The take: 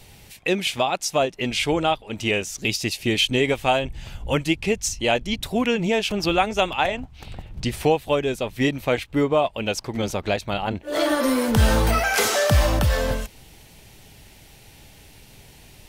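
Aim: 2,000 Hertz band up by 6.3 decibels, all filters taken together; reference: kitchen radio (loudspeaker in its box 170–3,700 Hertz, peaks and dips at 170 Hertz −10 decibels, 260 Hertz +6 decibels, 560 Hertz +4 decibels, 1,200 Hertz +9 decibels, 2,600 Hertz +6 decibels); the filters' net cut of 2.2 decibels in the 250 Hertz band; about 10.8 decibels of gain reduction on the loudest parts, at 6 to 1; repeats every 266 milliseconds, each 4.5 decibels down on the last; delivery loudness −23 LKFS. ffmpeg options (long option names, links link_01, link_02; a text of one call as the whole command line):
ffmpeg -i in.wav -af "equalizer=frequency=250:width_type=o:gain=-4.5,equalizer=frequency=2000:width_type=o:gain=3.5,acompressor=threshold=-25dB:ratio=6,highpass=170,equalizer=frequency=170:width_type=q:width=4:gain=-10,equalizer=frequency=260:width_type=q:width=4:gain=6,equalizer=frequency=560:width_type=q:width=4:gain=4,equalizer=frequency=1200:width_type=q:width=4:gain=9,equalizer=frequency=2600:width_type=q:width=4:gain=6,lowpass=frequency=3700:width=0.5412,lowpass=frequency=3700:width=1.3066,aecho=1:1:266|532|798|1064|1330|1596|1862|2128|2394:0.596|0.357|0.214|0.129|0.0772|0.0463|0.0278|0.0167|0.01,volume=2dB" out.wav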